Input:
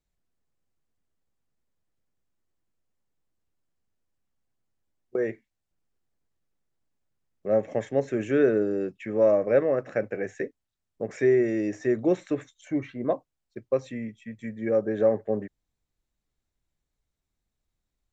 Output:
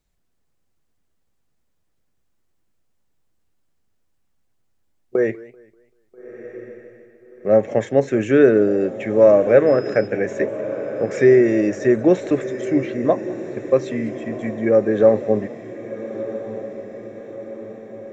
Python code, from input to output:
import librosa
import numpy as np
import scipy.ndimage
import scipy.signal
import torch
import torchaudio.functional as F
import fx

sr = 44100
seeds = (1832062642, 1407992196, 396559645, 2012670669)

y = fx.dmg_tone(x, sr, hz=5100.0, level_db=-52.0, at=(9.66, 10.06), fade=0.02)
y = fx.echo_diffused(y, sr, ms=1335, feedback_pct=57, wet_db=-13.0)
y = fx.echo_warbled(y, sr, ms=194, feedback_pct=35, rate_hz=2.8, cents=167, wet_db=-21)
y = y * librosa.db_to_amplitude(8.5)